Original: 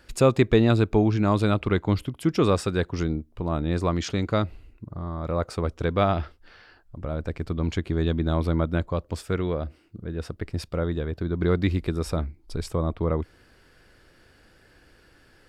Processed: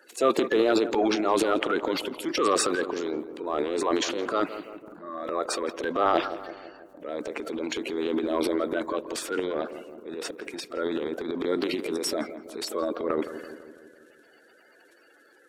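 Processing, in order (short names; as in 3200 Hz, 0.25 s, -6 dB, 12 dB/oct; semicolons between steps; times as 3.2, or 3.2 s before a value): bin magnitudes rounded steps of 30 dB; HPF 330 Hz 24 dB/oct; notch 5000 Hz, Q 12; transient shaper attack -3 dB, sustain +12 dB; darkening echo 0.166 s, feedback 63%, low-pass 1200 Hz, level -11 dB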